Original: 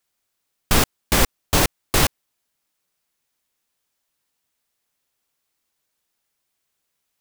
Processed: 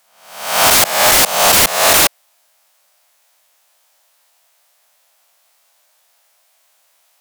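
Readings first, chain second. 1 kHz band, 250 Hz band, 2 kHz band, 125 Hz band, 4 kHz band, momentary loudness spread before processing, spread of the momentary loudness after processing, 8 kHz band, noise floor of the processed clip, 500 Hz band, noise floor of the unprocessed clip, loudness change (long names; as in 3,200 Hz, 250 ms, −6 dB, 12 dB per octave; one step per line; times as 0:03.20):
+11.5 dB, −1.0 dB, +10.5 dB, −5.5 dB, +11.5 dB, 1 LU, 6 LU, +12.5 dB, −59 dBFS, +9.5 dB, −77 dBFS, +10.5 dB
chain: peak hold with a rise ahead of every peak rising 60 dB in 0.65 s
Chebyshev high-pass filter 180 Hz, order 3
low shelf with overshoot 460 Hz −11 dB, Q 3
sine wavefolder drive 15 dB, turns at −3 dBFS
level −3 dB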